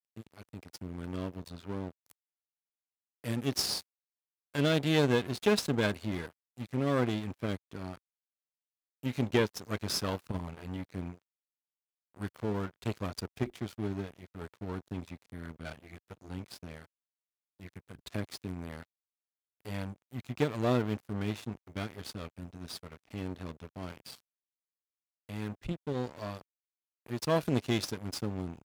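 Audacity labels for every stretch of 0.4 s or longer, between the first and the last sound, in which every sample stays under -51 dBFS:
2.110000	3.240000	silence
3.820000	4.540000	silence
7.970000	9.030000	silence
11.170000	12.150000	silence
16.850000	17.600000	silence
18.840000	19.650000	silence
24.200000	25.290000	silence
26.410000	27.060000	silence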